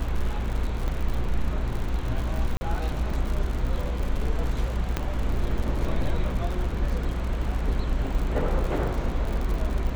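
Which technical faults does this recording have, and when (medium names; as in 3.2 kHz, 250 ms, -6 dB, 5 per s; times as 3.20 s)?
crackle 83 per s -30 dBFS
0.88 s: dropout 3.2 ms
2.57–2.61 s: dropout 40 ms
4.97 s: pop -11 dBFS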